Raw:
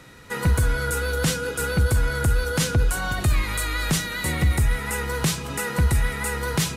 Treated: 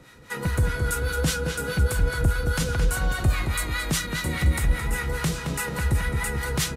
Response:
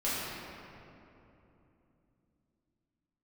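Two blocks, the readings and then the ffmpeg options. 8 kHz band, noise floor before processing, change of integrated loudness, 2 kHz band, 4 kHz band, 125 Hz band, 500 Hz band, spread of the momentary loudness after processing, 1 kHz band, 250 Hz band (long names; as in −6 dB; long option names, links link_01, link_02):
−2.5 dB, −33 dBFS, −2.0 dB, −2.0 dB, −2.5 dB, −2.0 dB, −2.5 dB, 4 LU, −2.5 dB, −2.0 dB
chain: -filter_complex "[0:a]acrossover=split=760[link_01][link_02];[link_01]aeval=exprs='val(0)*(1-0.7/2+0.7/2*cos(2*PI*4.9*n/s))':channel_layout=same[link_03];[link_02]aeval=exprs='val(0)*(1-0.7/2-0.7/2*cos(2*PI*4.9*n/s))':channel_layout=same[link_04];[link_03][link_04]amix=inputs=2:normalize=0,asplit=2[link_05][link_06];[link_06]adelay=219,lowpass=frequency=4100:poles=1,volume=-5.5dB,asplit=2[link_07][link_08];[link_08]adelay=219,lowpass=frequency=4100:poles=1,volume=0.5,asplit=2[link_09][link_10];[link_10]adelay=219,lowpass=frequency=4100:poles=1,volume=0.5,asplit=2[link_11][link_12];[link_12]adelay=219,lowpass=frequency=4100:poles=1,volume=0.5,asplit=2[link_13][link_14];[link_14]adelay=219,lowpass=frequency=4100:poles=1,volume=0.5,asplit=2[link_15][link_16];[link_16]adelay=219,lowpass=frequency=4100:poles=1,volume=0.5[link_17];[link_05][link_07][link_09][link_11][link_13][link_15][link_17]amix=inputs=7:normalize=0"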